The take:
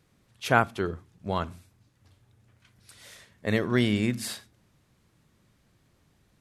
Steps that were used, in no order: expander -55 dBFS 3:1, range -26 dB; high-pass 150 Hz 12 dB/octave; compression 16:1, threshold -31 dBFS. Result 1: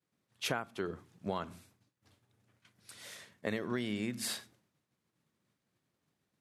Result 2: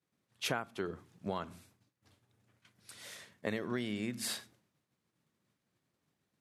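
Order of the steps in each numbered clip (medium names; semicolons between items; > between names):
expander > high-pass > compression; expander > compression > high-pass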